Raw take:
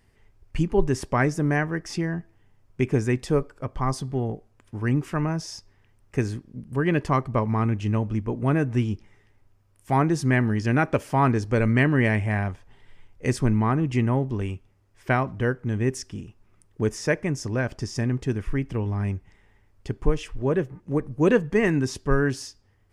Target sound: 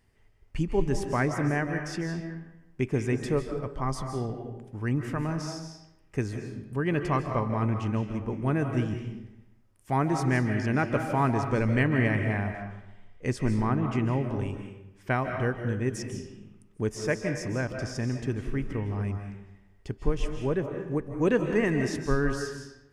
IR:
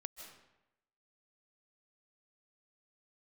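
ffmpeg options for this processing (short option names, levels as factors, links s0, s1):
-filter_complex "[0:a]asettb=1/sr,asplit=3[s0][s1][s2];[s0]atrim=end=11.874[s3];[s1]atrim=start=11.87:end=14.02,asetpts=PTS-STARTPTS,afade=t=in:d=0.004:c=qsin,afade=t=out:st=2.146:d=0.004:c=qsin,highshelf=f=8400:g=-8[s4];[s2]atrim=start=14.016[s5];[s3][s4]acrossfade=d=0.004:c1=hsin:c2=qsin[s6];[s6][s5]acrossfade=d=0.004:c1=qsin:c2=hsin[s7];[1:a]atrim=start_sample=2205[s8];[s7][s8]afir=irnorm=-1:irlink=0"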